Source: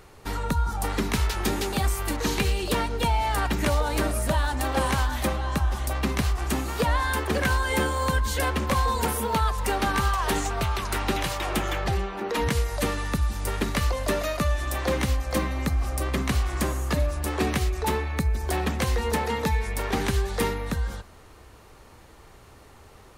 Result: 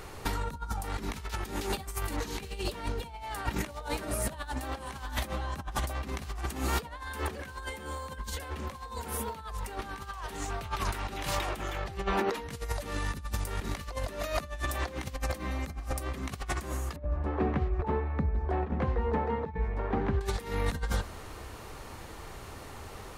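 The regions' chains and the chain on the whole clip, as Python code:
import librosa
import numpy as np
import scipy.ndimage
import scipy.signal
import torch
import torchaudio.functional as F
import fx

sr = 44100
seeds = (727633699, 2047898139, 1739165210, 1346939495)

y = fx.chain(x, sr, fx.lowpass(hz=1200.0, slope=12),
    fx.chopper(hz=1.2, depth_pct=65, duty_pct=10), at=(16.96, 20.21))
y = fx.hum_notches(y, sr, base_hz=60, count=10)
y = fx.over_compress(y, sr, threshold_db=-32.0, ratio=-0.5)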